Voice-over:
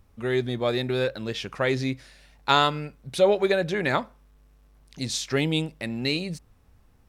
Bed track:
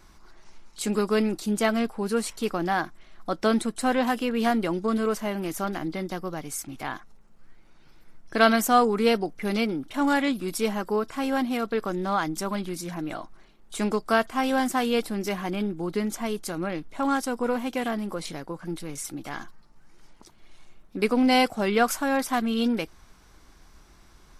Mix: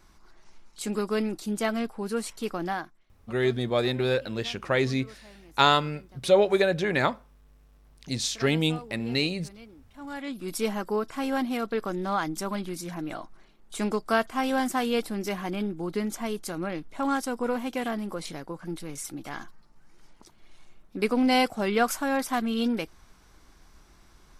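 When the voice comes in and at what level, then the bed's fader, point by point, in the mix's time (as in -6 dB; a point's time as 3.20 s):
3.10 s, 0.0 dB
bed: 2.70 s -4 dB
3.17 s -23 dB
9.87 s -23 dB
10.53 s -2 dB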